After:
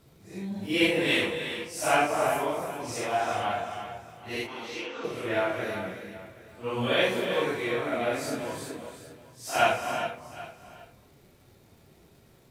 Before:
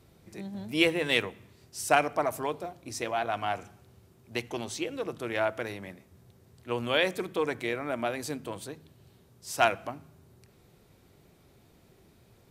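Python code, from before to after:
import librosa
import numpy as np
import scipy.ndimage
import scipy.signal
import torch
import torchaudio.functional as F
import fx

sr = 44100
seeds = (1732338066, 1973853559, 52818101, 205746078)

y = fx.phase_scramble(x, sr, seeds[0], window_ms=200)
y = fx.dmg_crackle(y, sr, seeds[1], per_s=150.0, level_db=-55.0)
y = fx.cabinet(y, sr, low_hz=330.0, low_slope=12, high_hz=4900.0, hz=(400.0, 640.0, 1400.0, 4400.0), db=(-10, -9, 7, -4), at=(4.46, 5.03), fade=0.02)
y = y + 10.0 ** (-19.0 / 20.0) * np.pad(y, (int(775 * sr / 1000.0), 0))[:len(y)]
y = fx.rev_gated(y, sr, seeds[2], gate_ms=420, shape='rising', drr_db=6.5)
y = F.gain(torch.from_numpy(y), 1.5).numpy()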